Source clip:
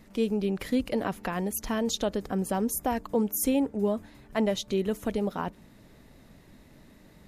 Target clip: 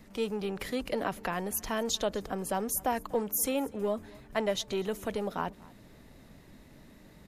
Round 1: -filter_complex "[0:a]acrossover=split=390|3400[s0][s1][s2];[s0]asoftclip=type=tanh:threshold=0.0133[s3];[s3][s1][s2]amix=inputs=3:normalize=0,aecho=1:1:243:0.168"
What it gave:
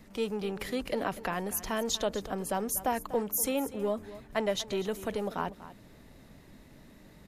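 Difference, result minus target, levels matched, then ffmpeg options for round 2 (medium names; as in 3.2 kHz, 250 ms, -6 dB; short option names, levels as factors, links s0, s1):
echo-to-direct +8 dB
-filter_complex "[0:a]acrossover=split=390|3400[s0][s1][s2];[s0]asoftclip=type=tanh:threshold=0.0133[s3];[s3][s1][s2]amix=inputs=3:normalize=0,aecho=1:1:243:0.0668"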